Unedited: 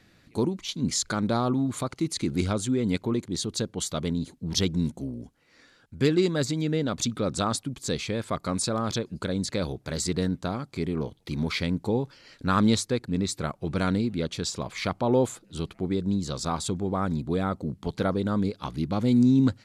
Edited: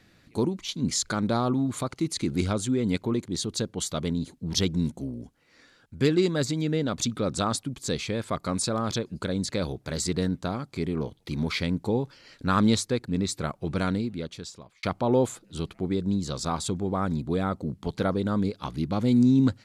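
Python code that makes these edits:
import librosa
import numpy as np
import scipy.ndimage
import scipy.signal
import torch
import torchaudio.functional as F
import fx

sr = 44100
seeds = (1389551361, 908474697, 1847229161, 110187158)

y = fx.edit(x, sr, fx.fade_out_span(start_s=13.72, length_s=1.11), tone=tone)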